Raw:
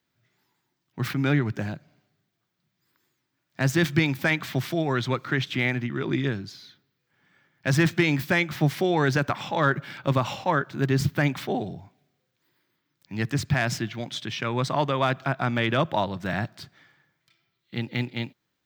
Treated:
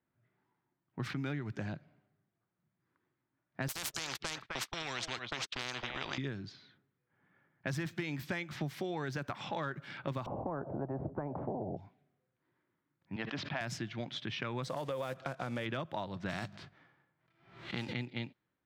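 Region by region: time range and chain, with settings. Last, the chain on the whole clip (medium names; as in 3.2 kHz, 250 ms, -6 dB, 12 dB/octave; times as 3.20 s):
3.68–6.18 s: gate -31 dBFS, range -59 dB + delay 259 ms -21.5 dB + spectrum-flattening compressor 10:1
10.26–11.77 s: Chebyshev low-pass 650 Hz, order 4 + spectrum-flattening compressor 4:1
13.16–13.61 s: cabinet simulation 310–4800 Hz, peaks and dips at 390 Hz -7 dB, 610 Hz +4 dB, 930 Hz +3 dB, 1.9 kHz -3 dB, 3.2 kHz +4 dB, 4.5 kHz -4 dB + decay stretcher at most 62 dB/s
14.63–15.66 s: block-companded coder 5-bit + peaking EQ 520 Hz +14 dB 0.24 oct + compression 2.5:1, threshold -23 dBFS
16.28–17.92 s: formants flattened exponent 0.6 + hum notches 50/100/150/200 Hz + swell ahead of each attack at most 88 dB/s
whole clip: level-controlled noise filter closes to 1.5 kHz, open at -21 dBFS; compression, threshold -30 dBFS; trim -4.5 dB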